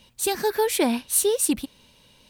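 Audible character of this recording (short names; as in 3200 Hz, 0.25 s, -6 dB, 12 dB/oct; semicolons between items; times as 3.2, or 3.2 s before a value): noise floor -58 dBFS; spectral tilt -2.0 dB/oct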